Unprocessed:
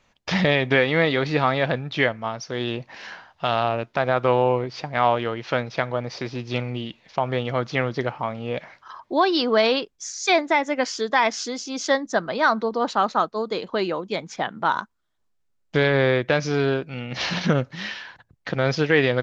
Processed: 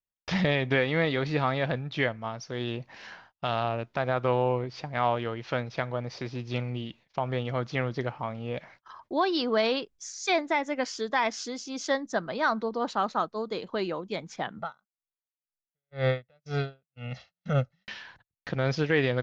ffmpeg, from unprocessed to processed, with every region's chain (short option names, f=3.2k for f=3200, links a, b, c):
-filter_complex "[0:a]asettb=1/sr,asplit=3[a][b][c];[a]atrim=end=14.584[d];[b]atrim=start=14.58:end=17.88,asetpts=PTS-STARTPTS,afade=t=in:d=0.004:c=qsin,afade=t=out:st=3.296:d=0.004:c=qsin,aecho=1:1:1.5:0.86,atrim=end_sample=145530,aeval=exprs='val(0)*pow(10,-40*(0.5-0.5*cos(2*PI*2*n/s))/20)':c=same[e];[c]atrim=start=17.876[f];[d][e]acrossfade=d=0.004:c1=hsin:c2=qsin[g];[g][f]acrossfade=d=0.004:c1=qsin:c2=hsin,agate=range=-33dB:threshold=-47dB:ratio=16:detection=peak,lowshelf=f=130:g=8,volume=-7dB"